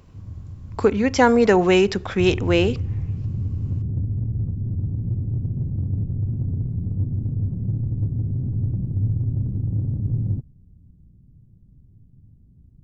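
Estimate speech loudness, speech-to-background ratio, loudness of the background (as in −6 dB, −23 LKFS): −18.5 LKFS, 7.5 dB, −26.0 LKFS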